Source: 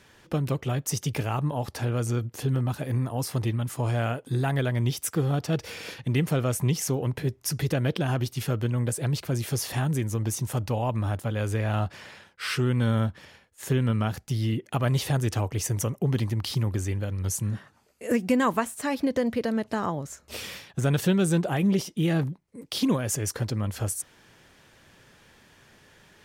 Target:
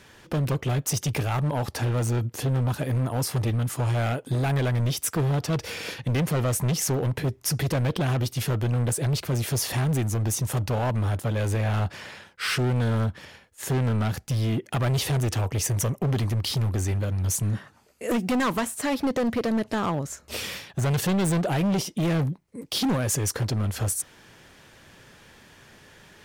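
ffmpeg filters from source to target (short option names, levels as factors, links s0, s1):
-af "asoftclip=type=hard:threshold=0.0531,volume=1.68"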